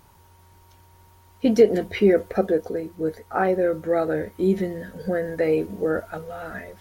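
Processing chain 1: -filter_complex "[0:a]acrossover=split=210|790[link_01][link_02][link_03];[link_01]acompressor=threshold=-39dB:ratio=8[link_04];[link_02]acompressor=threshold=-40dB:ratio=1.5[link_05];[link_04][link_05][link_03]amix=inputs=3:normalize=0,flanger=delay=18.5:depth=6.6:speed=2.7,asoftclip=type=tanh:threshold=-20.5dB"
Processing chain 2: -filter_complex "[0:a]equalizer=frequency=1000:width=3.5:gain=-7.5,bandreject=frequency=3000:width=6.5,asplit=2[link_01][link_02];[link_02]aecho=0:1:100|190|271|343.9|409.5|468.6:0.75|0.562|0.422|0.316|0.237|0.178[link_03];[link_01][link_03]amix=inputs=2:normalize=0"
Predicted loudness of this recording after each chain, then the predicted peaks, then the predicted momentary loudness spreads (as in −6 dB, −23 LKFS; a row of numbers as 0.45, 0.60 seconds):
−33.5, −20.0 LKFS; −20.5, −3.0 dBFS; 8, 10 LU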